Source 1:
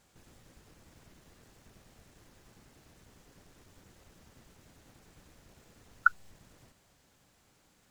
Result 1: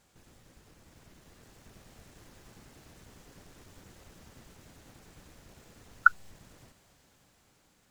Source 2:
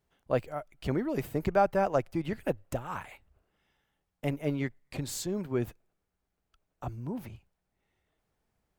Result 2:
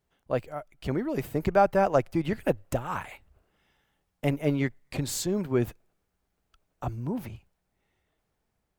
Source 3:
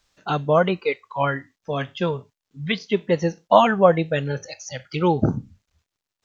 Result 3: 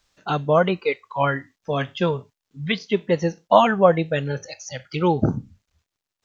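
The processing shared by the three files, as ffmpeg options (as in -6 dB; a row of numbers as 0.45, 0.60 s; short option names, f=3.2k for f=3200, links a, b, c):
-af "dynaudnorm=f=410:g=7:m=5dB"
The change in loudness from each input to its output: +4.0, +4.0, 0.0 LU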